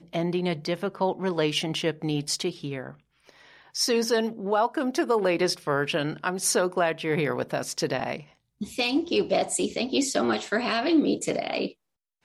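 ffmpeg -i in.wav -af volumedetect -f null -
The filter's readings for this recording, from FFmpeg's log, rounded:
mean_volume: -26.9 dB
max_volume: -11.8 dB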